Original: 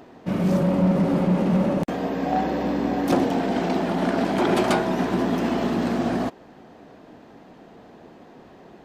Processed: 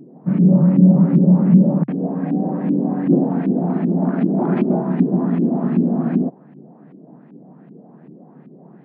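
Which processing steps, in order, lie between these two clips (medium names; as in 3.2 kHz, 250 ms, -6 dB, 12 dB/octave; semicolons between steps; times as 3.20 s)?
tilt EQ -2.5 dB/octave; LFO low-pass saw up 2.6 Hz 290–2500 Hz; tone controls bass +14 dB, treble -1 dB; FFT band-pass 130–5400 Hz; trim -8 dB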